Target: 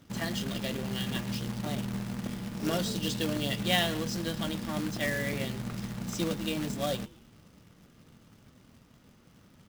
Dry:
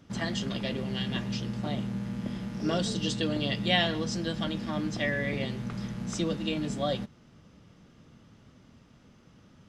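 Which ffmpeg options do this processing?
-filter_complex "[0:a]asplit=5[a][b][c][d][e];[b]adelay=112,afreqshift=-120,volume=-22dB[f];[c]adelay=224,afreqshift=-240,volume=-27.8dB[g];[d]adelay=336,afreqshift=-360,volume=-33.7dB[h];[e]adelay=448,afreqshift=-480,volume=-39.5dB[i];[a][f][g][h][i]amix=inputs=5:normalize=0,acrusher=bits=2:mode=log:mix=0:aa=0.000001,volume=-2dB"

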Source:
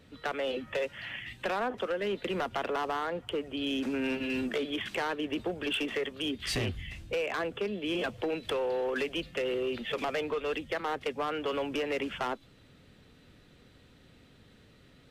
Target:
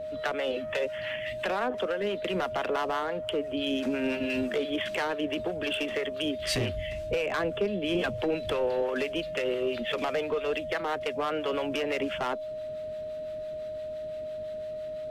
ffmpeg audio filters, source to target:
-filter_complex "[0:a]asettb=1/sr,asplit=3[a][b][c];[a]atrim=end=7.114[d];[b]atrim=start=7.11:end=8.83,asetpts=PTS-STARTPTS,afade=t=in:d=0.004:c=qsin,afade=t=out:st=1.716:d=0.004:c=qsin,lowshelf=f=180:g=9[e];[c]atrim=start=8.826[f];[d][e]acrossfade=d=0.004:c1=hsin:c2=qsin[g];[g][f]acrossfade=d=0.004:c1=qsin:c2=hsin,asplit=2[h][i];[i]acompressor=threshold=-43dB:ratio=6,volume=-2dB[j];[h][j]amix=inputs=2:normalize=0,acrossover=split=760[k][l];[k]aeval=exprs='val(0)*(1-0.5/2+0.5/2*cos(2*PI*5.9*n/s))':c=same[m];[l]aeval=exprs='val(0)*(1-0.5/2-0.5/2*cos(2*PI*5.9*n/s))':c=same[n];[m][n]amix=inputs=2:normalize=0,aeval=exprs='val(0)+0.0158*sin(2*PI*620*n/s)':c=same,volume=2.5dB"

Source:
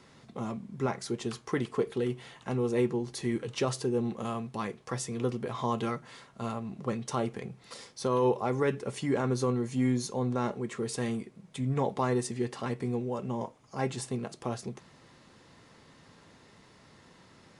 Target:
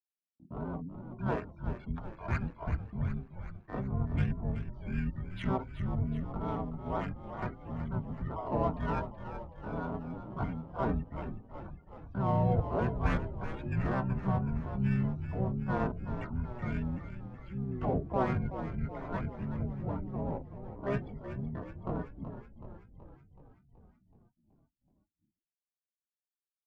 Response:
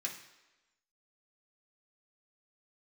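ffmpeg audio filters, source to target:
-filter_complex "[0:a]afftdn=nr=25:nf=-46,afftfilt=real='re*gte(hypot(re,im),0.00891)':imag='im*gte(hypot(re,im),0.00891)':win_size=1024:overlap=0.75,aeval=exprs='0.158*(cos(1*acos(clip(val(0)/0.158,-1,1)))-cos(1*PI/2))+0.00282*(cos(3*acos(clip(val(0)/0.158,-1,1)))-cos(3*PI/2))+0.001*(cos(5*acos(clip(val(0)/0.158,-1,1)))-cos(5*PI/2))':c=same,agate=range=-42dB:threshold=-52dB:ratio=16:detection=peak,lowshelf=f=360:g=-5.5,atempo=0.66,highpass=f=170:t=q:w=0.5412,highpass=f=170:t=q:w=1.307,lowpass=f=2.6k:t=q:w=0.5176,lowpass=f=2.6k:t=q:w=0.7071,lowpass=f=2.6k:t=q:w=1.932,afreqshift=-390,adynamicsmooth=sensitivity=4.5:basefreq=1.4k,asplit=4[a][b][c][d];[b]asetrate=22050,aresample=44100,atempo=2,volume=-18dB[e];[c]asetrate=29433,aresample=44100,atempo=1.49831,volume=-18dB[f];[d]asetrate=66075,aresample=44100,atempo=0.66742,volume=-2dB[g];[a][e][f][g]amix=inputs=4:normalize=0,highpass=40,asplit=9[h][i][j][k][l][m][n][o][p];[i]adelay=376,afreqshift=-46,volume=-10dB[q];[j]adelay=752,afreqshift=-92,volume=-14dB[r];[k]adelay=1128,afreqshift=-138,volume=-18dB[s];[l]adelay=1504,afreqshift=-184,volume=-22dB[t];[m]adelay=1880,afreqshift=-230,volume=-26.1dB[u];[n]adelay=2256,afreqshift=-276,volume=-30.1dB[v];[o]adelay=2632,afreqshift=-322,volume=-34.1dB[w];[p]adelay=3008,afreqshift=-368,volume=-38.1dB[x];[h][q][r][s][t][u][v][w][x]amix=inputs=9:normalize=0"

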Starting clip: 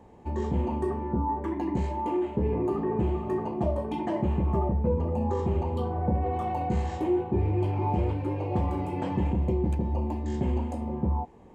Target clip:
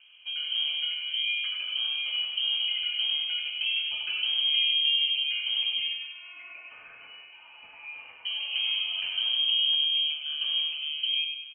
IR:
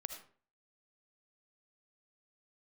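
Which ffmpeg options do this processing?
-filter_complex "[0:a]asettb=1/sr,asplit=3[a][b][c];[a]atrim=end=5.934[d];[b]atrim=start=5.93:end=8.25,asetpts=PTS-STARTPTS,afade=t=in:d=0.004:c=qsin,afade=t=out:st=2.316:d=0.004:c=qsin,highpass=1.3k[e];[c]atrim=start=8.246[f];[d][e]acrossfade=d=0.004:c1=hsin:c2=qsin[g];[g][f]acrossfade=d=0.004:c1=qsin:c2=hsin,aecho=1:1:98|196|294|392|490|588:0.531|0.271|0.138|0.0704|0.0359|0.0183,lowpass=f=2.8k:t=q:w=0.5098,lowpass=f=2.8k:t=q:w=0.6013,lowpass=f=2.8k:t=q:w=0.9,lowpass=f=2.8k:t=q:w=2.563,afreqshift=-3300,volume=-3.5dB"

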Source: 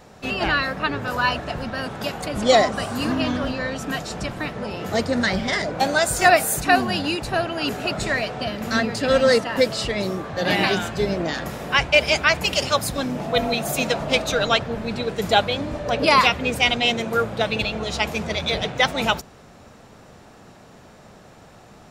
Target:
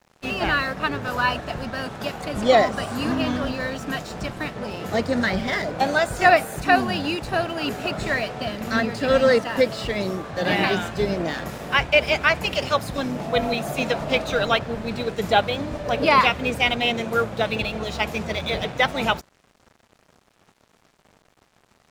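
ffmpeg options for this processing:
-filter_complex "[0:a]acrossover=split=3500[a][b];[b]acompressor=threshold=-37dB:ratio=4:attack=1:release=60[c];[a][c]amix=inputs=2:normalize=0,aeval=exprs='sgn(val(0))*max(abs(val(0))-0.00668,0)':c=same"

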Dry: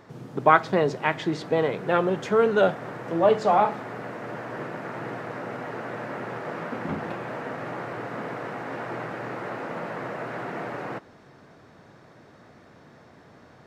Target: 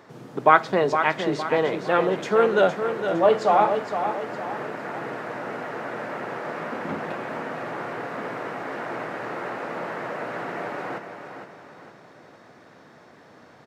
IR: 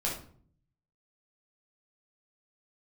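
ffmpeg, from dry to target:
-filter_complex "[0:a]highpass=f=250:p=1,asplit=2[a][b];[b]aecho=0:1:461|922|1383|1844|2305:0.398|0.167|0.0702|0.0295|0.0124[c];[a][c]amix=inputs=2:normalize=0,volume=2dB"

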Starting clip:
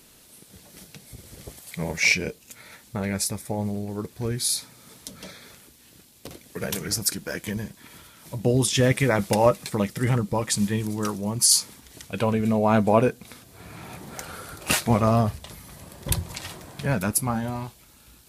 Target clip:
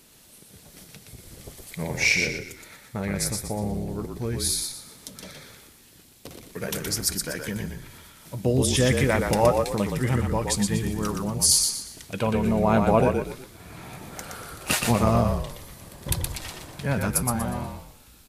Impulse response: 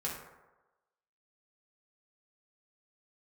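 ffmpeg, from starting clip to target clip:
-filter_complex "[0:a]asplit=5[a][b][c][d][e];[b]adelay=120,afreqshift=-38,volume=-4.5dB[f];[c]adelay=240,afreqshift=-76,volume=-13.9dB[g];[d]adelay=360,afreqshift=-114,volume=-23.2dB[h];[e]adelay=480,afreqshift=-152,volume=-32.6dB[i];[a][f][g][h][i]amix=inputs=5:normalize=0,volume=-1.5dB"

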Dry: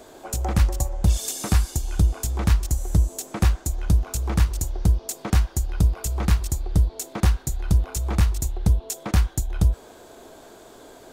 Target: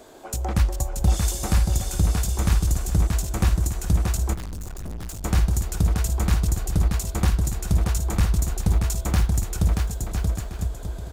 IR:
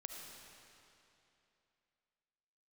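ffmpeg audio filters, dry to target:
-filter_complex "[0:a]asettb=1/sr,asplit=3[a][b][c];[a]atrim=end=8.704[d];[b]atrim=start=8.7:end=9.4,asetpts=PTS-STARTPTS,afade=t=in:d=0.004:c=qsin,afade=t=out:st=0.696:d=0.004:c=qsin,acrusher=bits=9:mode=log:mix=0:aa=0.000001[e];[c]atrim=start=9.396[f];[d][e]acrossfade=d=0.004:c1=hsin:c2=qsin[g];[g][f]acrossfade=d=0.004:c1=qsin:c2=hsin,aecho=1:1:630|1008|1235|1371|1453:0.631|0.398|0.251|0.158|0.1,asplit=3[h][i][j];[h]afade=t=out:st=4.33:d=0.02[k];[i]aeval=exprs='(tanh(31.6*val(0)+0.6)-tanh(0.6))/31.6':c=same,afade=t=in:st=4.33:d=0.02,afade=t=out:st=5.23:d=0.02[l];[j]afade=t=in:st=5.23:d=0.02[m];[k][l][m]amix=inputs=3:normalize=0,volume=-1.5dB"

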